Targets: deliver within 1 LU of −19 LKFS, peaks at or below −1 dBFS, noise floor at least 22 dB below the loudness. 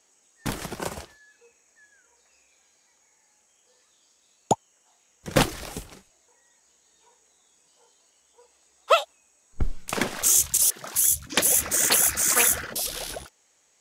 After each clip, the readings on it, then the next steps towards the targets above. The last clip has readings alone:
integrated loudness −22.0 LKFS; sample peak −4.5 dBFS; target loudness −19.0 LKFS
→ level +3 dB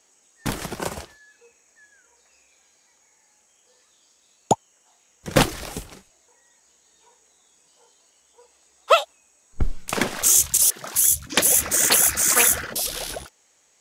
integrated loudness −19.0 LKFS; sample peak −1.5 dBFS; background noise floor −62 dBFS

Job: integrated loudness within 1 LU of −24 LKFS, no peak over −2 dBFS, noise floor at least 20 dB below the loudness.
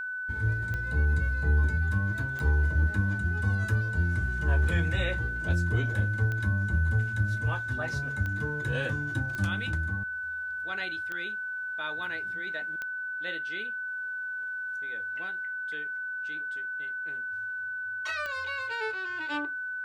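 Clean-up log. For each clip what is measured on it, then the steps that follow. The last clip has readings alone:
number of clicks 8; interfering tone 1,500 Hz; level of the tone −32 dBFS; integrated loudness −30.0 LKFS; sample peak −14.5 dBFS; target loudness −24.0 LKFS
→ click removal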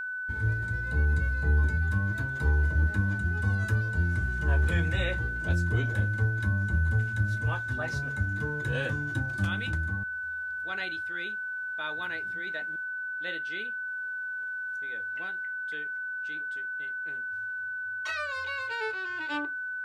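number of clicks 0; interfering tone 1,500 Hz; level of the tone −32 dBFS
→ notch filter 1,500 Hz, Q 30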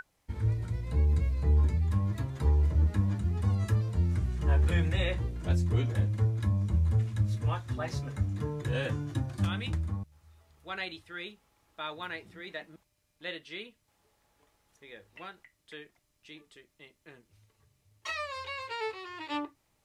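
interfering tone none found; integrated loudness −31.0 LKFS; sample peak −15.5 dBFS; target loudness −24.0 LKFS
→ level +7 dB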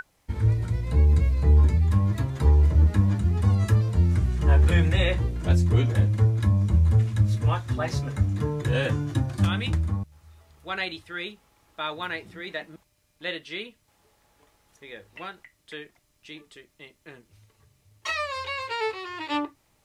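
integrated loudness −24.0 LKFS; sample peak −8.5 dBFS; background noise floor −67 dBFS

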